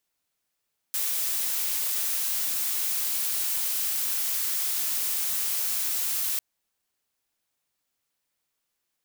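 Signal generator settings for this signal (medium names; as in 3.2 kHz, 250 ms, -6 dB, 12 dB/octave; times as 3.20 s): noise blue, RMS -27.5 dBFS 5.45 s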